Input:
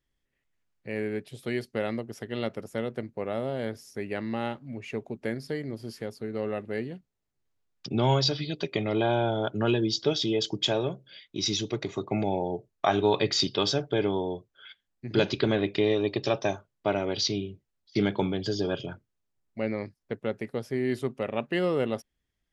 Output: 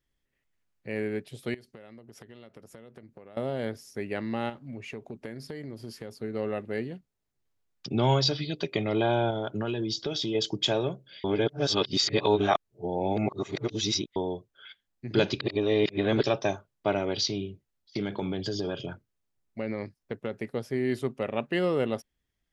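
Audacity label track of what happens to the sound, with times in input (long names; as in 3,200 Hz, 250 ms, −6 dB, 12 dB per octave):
1.540000	3.370000	downward compressor 12 to 1, threshold −44 dBFS
4.490000	6.110000	downward compressor, threshold −34 dBFS
9.300000	10.350000	downward compressor, threshold −26 dBFS
11.240000	14.160000	reverse
15.410000	16.230000	reverse
17.250000	20.380000	downward compressor, threshold −26 dBFS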